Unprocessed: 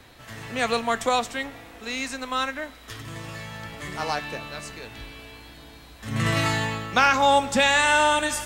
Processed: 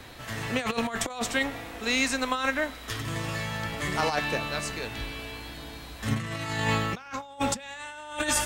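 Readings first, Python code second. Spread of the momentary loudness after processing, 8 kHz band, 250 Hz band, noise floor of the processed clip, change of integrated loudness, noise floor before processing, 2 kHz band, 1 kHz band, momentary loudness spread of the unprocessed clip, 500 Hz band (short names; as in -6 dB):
11 LU, -0.5 dB, -0.5 dB, -44 dBFS, -7.0 dB, -47 dBFS, -5.0 dB, -8.5 dB, 21 LU, -5.5 dB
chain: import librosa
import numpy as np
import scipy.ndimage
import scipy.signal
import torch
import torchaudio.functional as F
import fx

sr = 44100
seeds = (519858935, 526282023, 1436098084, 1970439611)

y = fx.over_compress(x, sr, threshold_db=-28.0, ratio=-0.5)
y = fx.end_taper(y, sr, db_per_s=350.0)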